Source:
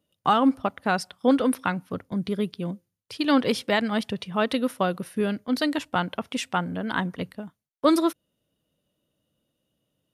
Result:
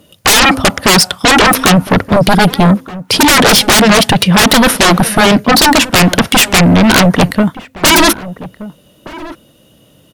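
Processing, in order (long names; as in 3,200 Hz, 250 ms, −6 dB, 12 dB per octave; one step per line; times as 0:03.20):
sine wavefolder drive 20 dB, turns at −9 dBFS
slap from a distant wall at 210 metres, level −16 dB
level +5.5 dB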